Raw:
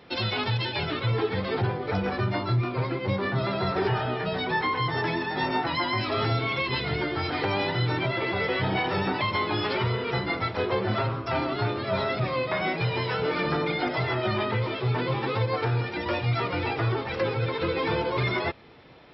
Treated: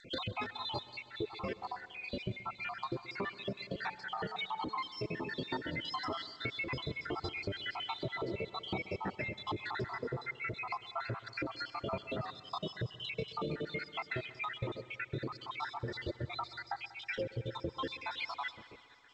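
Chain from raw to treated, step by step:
time-frequency cells dropped at random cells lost 79%
0:03.62–0:05.33: hum removal 217.9 Hz, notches 4
0:15.92–0:16.39: dynamic equaliser 1,600 Hz, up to −4 dB, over −50 dBFS, Q 1
downward compressor 6 to 1, threshold −36 dBFS, peak gain reduction 13 dB
pitch vibrato 2.2 Hz 7.8 cents
echo machine with several playback heads 64 ms, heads second and third, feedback 65%, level −20 dB
level +1 dB
G.722 64 kbit/s 16,000 Hz

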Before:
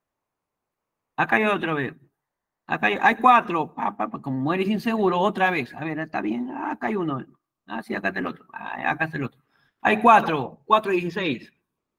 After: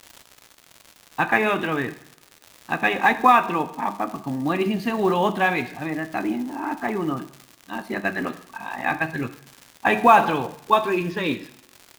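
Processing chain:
surface crackle 160 per second −31 dBFS
coupled-rooms reverb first 0.65 s, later 2.4 s, from −27 dB, DRR 10 dB
floating-point word with a short mantissa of 4 bits

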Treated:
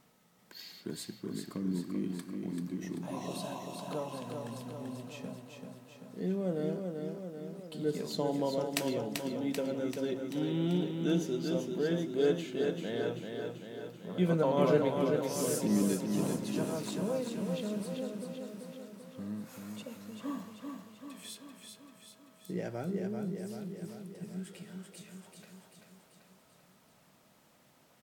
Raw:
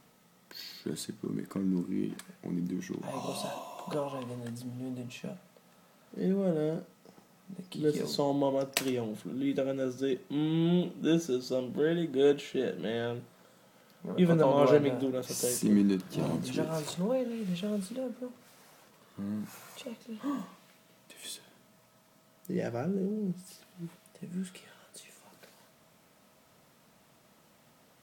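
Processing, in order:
repeating echo 388 ms, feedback 59%, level −5 dB
level −4 dB

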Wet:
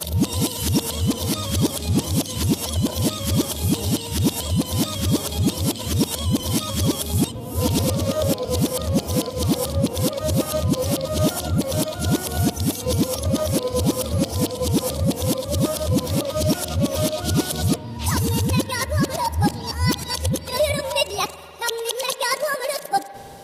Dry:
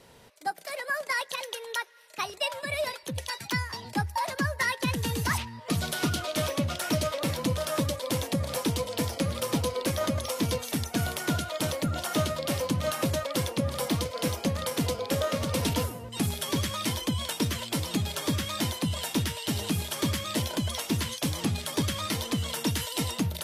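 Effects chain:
played backwards from end to start
parametric band 1,800 Hz −12 dB 1.5 octaves
spring reverb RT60 2.8 s, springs 50 ms, chirp 80 ms, DRR 14.5 dB
speech leveller within 5 dB 2 s
level +9 dB

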